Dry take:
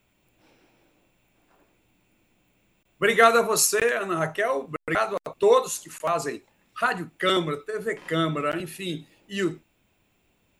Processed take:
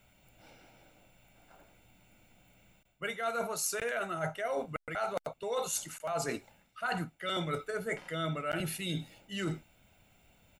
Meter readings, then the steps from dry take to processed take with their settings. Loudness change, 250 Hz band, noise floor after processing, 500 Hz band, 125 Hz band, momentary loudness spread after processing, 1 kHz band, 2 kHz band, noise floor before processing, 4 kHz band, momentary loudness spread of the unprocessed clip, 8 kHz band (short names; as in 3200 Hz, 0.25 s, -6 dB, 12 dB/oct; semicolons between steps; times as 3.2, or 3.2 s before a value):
-11.5 dB, -9.5 dB, -69 dBFS, -12.5 dB, -5.0 dB, 6 LU, -11.5 dB, -11.5 dB, -68 dBFS, -9.0 dB, 14 LU, -9.5 dB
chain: comb 1.4 ms, depth 50%; reverse; compressor 16:1, threshold -33 dBFS, peak gain reduction 24.5 dB; reverse; gain +2 dB